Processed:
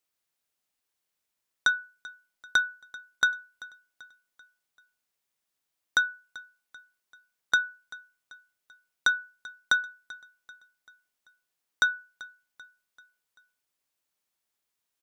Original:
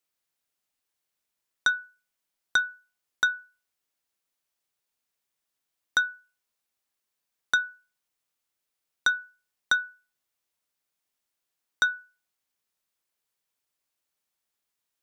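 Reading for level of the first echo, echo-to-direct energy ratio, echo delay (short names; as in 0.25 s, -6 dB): -20.0 dB, -19.0 dB, 0.388 s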